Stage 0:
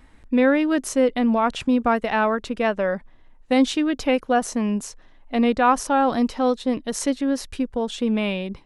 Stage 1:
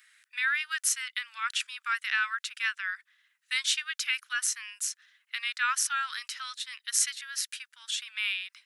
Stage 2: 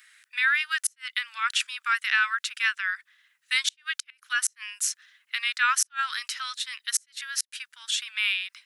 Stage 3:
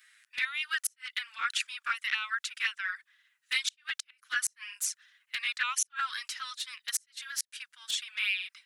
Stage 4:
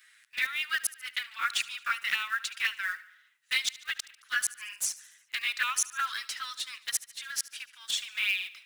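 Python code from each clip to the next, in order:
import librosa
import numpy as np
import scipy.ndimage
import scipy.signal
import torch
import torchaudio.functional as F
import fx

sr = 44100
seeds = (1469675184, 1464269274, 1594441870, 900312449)

y1 = scipy.signal.sosfilt(scipy.signal.butter(8, 1400.0, 'highpass', fs=sr, output='sos'), x)
y1 = fx.high_shelf(y1, sr, hz=5900.0, db=7.5)
y2 = fx.gate_flip(y1, sr, shuts_db=-16.0, range_db=-39)
y2 = y2 * librosa.db_to_amplitude(5.0)
y3 = fx.env_flanger(y2, sr, rest_ms=9.4, full_db=-20.0)
y3 = y3 * librosa.db_to_amplitude(-2.0)
y4 = fx.block_float(y3, sr, bits=5)
y4 = fx.echo_feedback(y4, sr, ms=73, feedback_pct=58, wet_db=-18.5)
y4 = y4 * librosa.db_to_amplitude(1.5)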